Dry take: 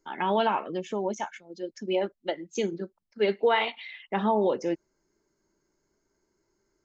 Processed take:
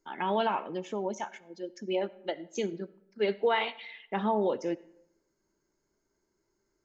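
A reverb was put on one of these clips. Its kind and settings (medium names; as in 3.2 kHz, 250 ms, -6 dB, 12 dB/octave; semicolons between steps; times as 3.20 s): algorithmic reverb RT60 0.79 s, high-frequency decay 0.6×, pre-delay 30 ms, DRR 19.5 dB; trim -3.5 dB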